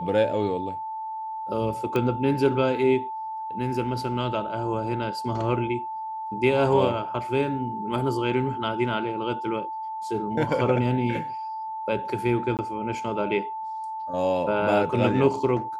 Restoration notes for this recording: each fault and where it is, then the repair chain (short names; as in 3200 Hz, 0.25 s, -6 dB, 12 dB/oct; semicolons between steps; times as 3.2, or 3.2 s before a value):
tone 880 Hz -30 dBFS
1.96 pop -14 dBFS
12.57–12.59 gap 18 ms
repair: de-click; notch 880 Hz, Q 30; interpolate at 12.57, 18 ms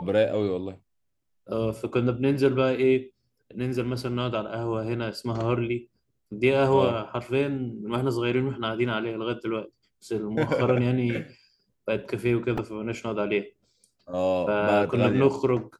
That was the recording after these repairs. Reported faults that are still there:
none